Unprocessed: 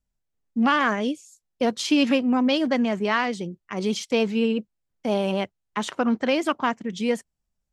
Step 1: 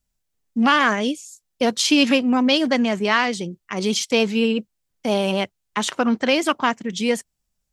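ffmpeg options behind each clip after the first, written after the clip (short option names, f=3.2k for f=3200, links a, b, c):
-af "highshelf=f=2.5k:g=8,volume=2.5dB"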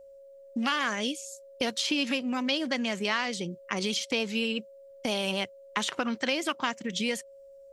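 -filter_complex "[0:a]acrossover=split=1700|4000[a][b][c];[a]acompressor=threshold=-31dB:ratio=4[d];[b]acompressor=threshold=-32dB:ratio=4[e];[c]acompressor=threshold=-39dB:ratio=4[f];[d][e][f]amix=inputs=3:normalize=0,aeval=exprs='val(0)+0.00398*sin(2*PI*550*n/s)':c=same"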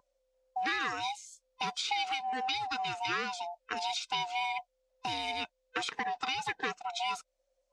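-af "afftfilt=real='real(if(lt(b,1008),b+24*(1-2*mod(floor(b/24),2)),b),0)':imag='imag(if(lt(b,1008),b+24*(1-2*mod(floor(b/24),2)),b),0)':win_size=2048:overlap=0.75,highpass=220,lowpass=6.5k,volume=-4dB"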